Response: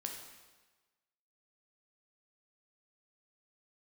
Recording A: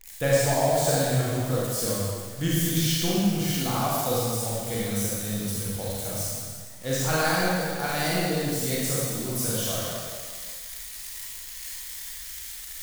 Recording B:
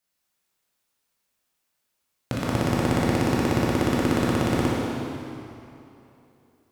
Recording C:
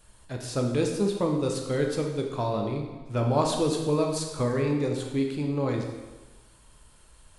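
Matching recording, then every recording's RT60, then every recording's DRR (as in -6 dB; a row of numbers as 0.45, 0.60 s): C; 1.8, 2.9, 1.3 s; -7.0, -6.0, 1.5 dB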